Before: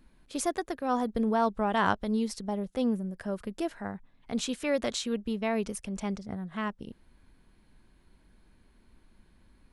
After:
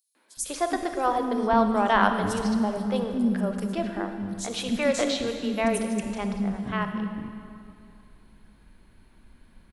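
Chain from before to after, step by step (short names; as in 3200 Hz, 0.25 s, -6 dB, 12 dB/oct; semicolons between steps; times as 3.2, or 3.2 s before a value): three bands offset in time highs, mids, lows 0.15/0.37 s, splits 350/5500 Hz; on a send at -6 dB: reverb RT60 2.6 s, pre-delay 28 ms; on the sum: gain +5.5 dB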